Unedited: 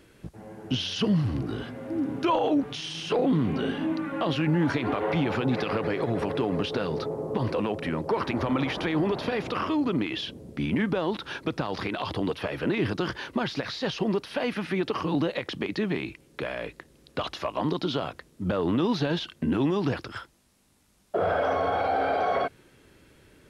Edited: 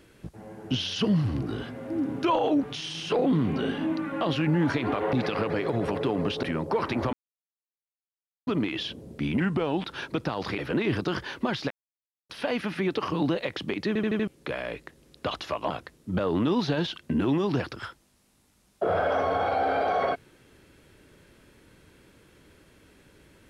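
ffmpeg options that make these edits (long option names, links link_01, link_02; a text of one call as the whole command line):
ffmpeg -i in.wav -filter_complex "[0:a]asplit=16[link_01][link_02][link_03][link_04][link_05][link_06][link_07][link_08][link_09][link_10][link_11][link_12][link_13][link_14][link_15][link_16];[link_01]atrim=end=5.132[link_17];[link_02]atrim=start=5.468:end=6.772[link_18];[link_03]atrim=start=7.808:end=8.51,asetpts=PTS-STARTPTS,afade=type=out:start_time=0.698:duration=0.004:curve=hsin[link_19];[link_04]atrim=start=8.51:end=9.85,asetpts=PTS-STARTPTS,volume=0[link_20];[link_05]atrim=start=9.85:end=10.784,asetpts=PTS-STARTPTS,afade=type=in:duration=0.004:curve=hsin[link_21];[link_06]atrim=start=10.78:end=11.18,asetpts=PTS-STARTPTS,asetrate=38808,aresample=44100,atrim=end_sample=20045,asetpts=PTS-STARTPTS[link_22];[link_07]atrim=start=11.176:end=11.912[link_23];[link_08]atrim=start=12.508:end=13.63,asetpts=PTS-STARTPTS,afade=type=out:start_time=1.118:duration=0.004:curve=hsin[link_24];[link_09]atrim=start=13.63:end=14.22,asetpts=PTS-STARTPTS,volume=0[link_25];[link_10]atrim=start=14.22:end=15.882,asetpts=PTS-STARTPTS,afade=type=in:duration=0.004:curve=hsin[link_26];[link_11]atrim=start=15.798:end=15.882[link_27];[link_12]atrim=start=15.798:end=15.882[link_28];[link_13]atrim=start=15.798:end=15.882[link_29];[link_14]atrim=start=15.798:end=15.882[link_30];[link_15]atrim=start=16.198:end=17.632[link_31];[link_16]atrim=start=18.028[link_32];[link_17][link_18]acrossfade=duration=0.004:curve1=hsin:curve2=hsin[link_33];[link_19][link_20][link_21]concat=n=3:v=0:a=1[link_34];[link_33][link_34]acrossfade=duration=0.004:curve1=hsin:curve2=hsin[link_35];[link_35][link_22]acrossfade=duration=0.004:curve1=hsin:curve2=hsin[link_36];[link_36][link_23]acrossfade=duration=0.004:curve1=hsin:curve2=hsin[link_37];[link_24][link_25][link_26]concat=n=3:v=0:a=1[link_38];[link_37][link_38]acrossfade=duration=0.004:curve1=hsin:curve2=hsin[link_39];[link_39][link_27]acrossfade=duration=0.004:curve1=hsin:curve2=hsin[link_40];[link_40][link_28]acrossfade=duration=0.004:curve1=hsin:curve2=hsin[link_41];[link_41][link_29]acrossfade=duration=0.004:curve1=hsin:curve2=hsin[link_42];[link_42][link_30]acrossfade=duration=0.004:curve1=hsin:curve2=hsin[link_43];[link_43][link_31]acrossfade=duration=0.004:curve1=hsin:curve2=hsin[link_44];[link_44][link_32]acrossfade=duration=0.004:curve1=hsin:curve2=hsin" out.wav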